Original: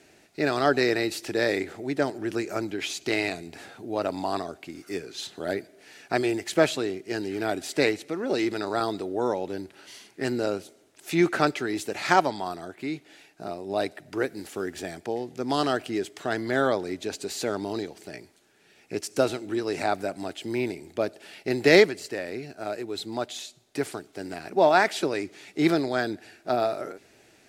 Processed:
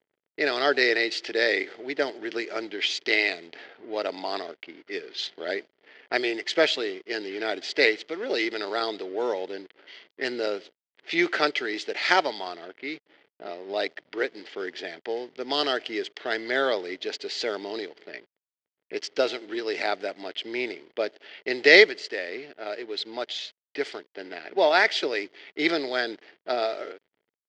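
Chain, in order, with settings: hysteresis with a dead band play -42 dBFS; cabinet simulation 410–6100 Hz, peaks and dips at 450 Hz +4 dB, 760 Hz -3 dB, 1.1 kHz -5 dB, 2 kHz +8 dB, 3.2 kHz +9 dB, 4.7 kHz +7 dB; level-controlled noise filter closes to 2.4 kHz, open at -24 dBFS

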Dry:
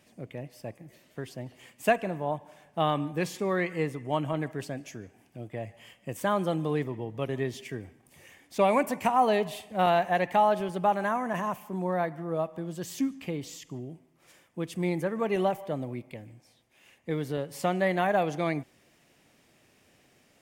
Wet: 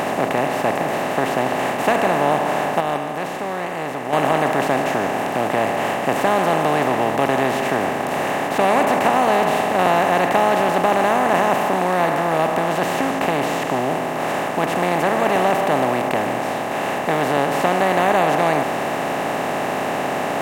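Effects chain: spectral levelling over time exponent 0.2; 2.80–4.13 s: gate -14 dBFS, range -7 dB

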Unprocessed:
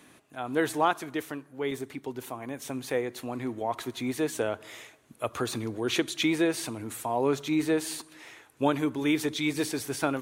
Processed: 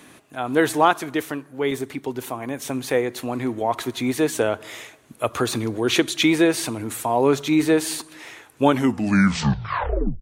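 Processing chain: tape stop on the ending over 1.56 s; trim +8 dB

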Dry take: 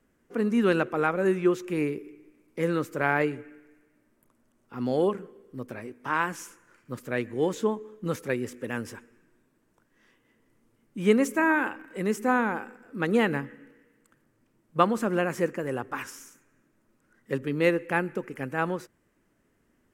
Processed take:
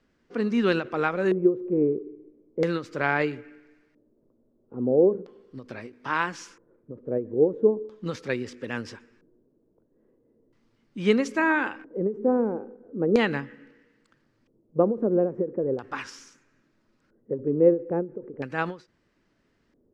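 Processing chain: LFO low-pass square 0.38 Hz 470–4600 Hz; endings held to a fixed fall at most 200 dB/s

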